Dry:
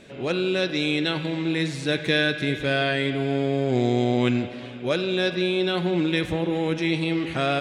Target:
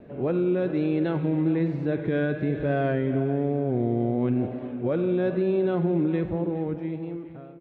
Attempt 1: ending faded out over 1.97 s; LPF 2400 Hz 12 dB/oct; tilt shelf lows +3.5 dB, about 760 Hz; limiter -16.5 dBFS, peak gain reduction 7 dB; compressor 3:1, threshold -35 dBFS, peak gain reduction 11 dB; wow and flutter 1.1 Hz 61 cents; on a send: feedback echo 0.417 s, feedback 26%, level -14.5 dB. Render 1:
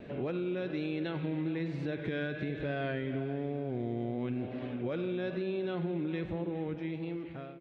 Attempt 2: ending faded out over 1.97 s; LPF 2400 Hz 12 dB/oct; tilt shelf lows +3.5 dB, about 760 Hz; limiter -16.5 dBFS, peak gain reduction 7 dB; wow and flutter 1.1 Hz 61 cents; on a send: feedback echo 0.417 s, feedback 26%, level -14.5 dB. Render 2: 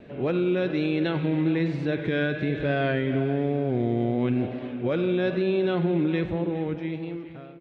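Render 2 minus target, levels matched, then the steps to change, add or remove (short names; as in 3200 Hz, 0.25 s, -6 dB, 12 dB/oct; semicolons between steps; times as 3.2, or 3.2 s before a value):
2000 Hz band +5.5 dB
change: LPF 1200 Hz 12 dB/oct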